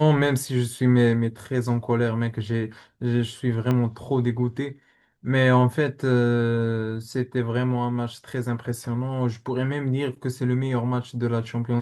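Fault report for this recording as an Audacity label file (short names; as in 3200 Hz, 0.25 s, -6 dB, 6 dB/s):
3.710000	3.710000	pop -13 dBFS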